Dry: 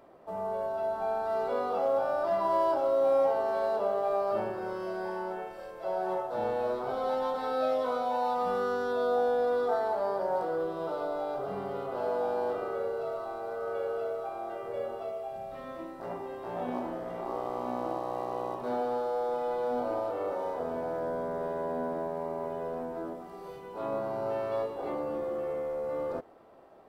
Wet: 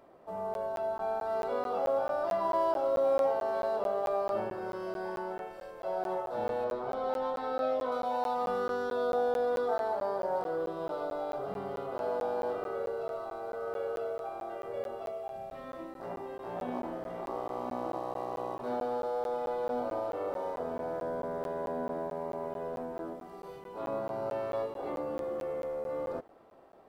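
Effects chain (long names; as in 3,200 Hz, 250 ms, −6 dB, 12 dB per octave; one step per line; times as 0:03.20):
0:06.64–0:07.92: high-shelf EQ 4,900 Hz −9.5 dB
regular buffer underruns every 0.22 s, samples 512, zero, from 0:00.54
level −2 dB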